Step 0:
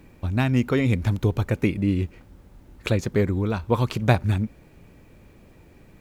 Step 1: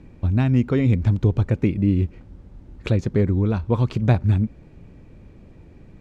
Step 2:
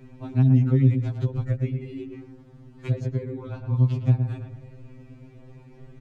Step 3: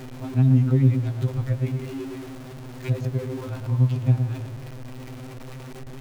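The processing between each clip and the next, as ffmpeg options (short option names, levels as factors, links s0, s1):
-filter_complex "[0:a]lowpass=6600,lowshelf=f=470:g=10,asplit=2[s0][s1];[s1]alimiter=limit=0.355:level=0:latency=1:release=361,volume=0.794[s2];[s0][s2]amix=inputs=2:normalize=0,volume=0.376"
-filter_complex "[0:a]asplit=2[s0][s1];[s1]adelay=111,lowpass=f=1500:p=1,volume=0.376,asplit=2[s2][s3];[s3]adelay=111,lowpass=f=1500:p=1,volume=0.35,asplit=2[s4][s5];[s5]adelay=111,lowpass=f=1500:p=1,volume=0.35,asplit=2[s6][s7];[s7]adelay=111,lowpass=f=1500:p=1,volume=0.35[s8];[s0][s2][s4][s6][s8]amix=inputs=5:normalize=0,acrossover=split=180|410[s9][s10][s11];[s9]acompressor=threshold=0.0708:ratio=4[s12];[s10]acompressor=threshold=0.02:ratio=4[s13];[s11]acompressor=threshold=0.00794:ratio=4[s14];[s12][s13][s14]amix=inputs=3:normalize=0,afftfilt=real='re*2.45*eq(mod(b,6),0)':imag='im*2.45*eq(mod(b,6),0)':win_size=2048:overlap=0.75,volume=1.33"
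-af "aeval=exprs='val(0)+0.5*0.0178*sgn(val(0))':c=same"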